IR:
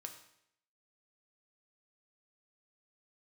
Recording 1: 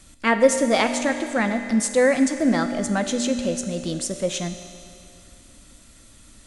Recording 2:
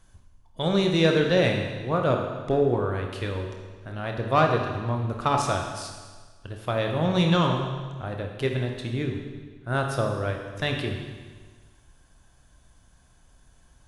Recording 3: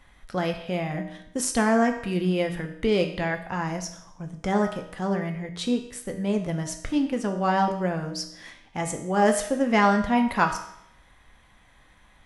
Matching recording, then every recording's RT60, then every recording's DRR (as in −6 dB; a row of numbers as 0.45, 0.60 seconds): 3; 2.6, 1.5, 0.75 seconds; 6.5, 2.0, 3.5 decibels